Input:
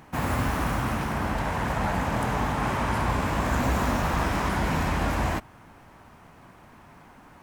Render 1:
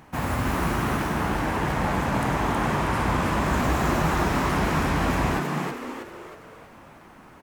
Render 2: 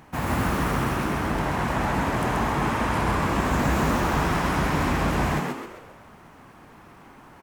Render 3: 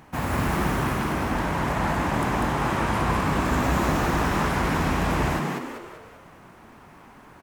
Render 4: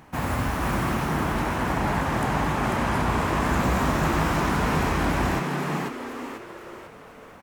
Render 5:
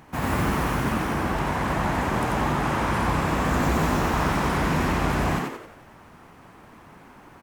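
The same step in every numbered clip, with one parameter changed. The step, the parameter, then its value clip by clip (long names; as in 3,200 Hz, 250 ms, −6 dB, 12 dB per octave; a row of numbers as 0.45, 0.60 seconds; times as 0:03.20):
echo with shifted repeats, delay time: 319, 132, 195, 493, 89 milliseconds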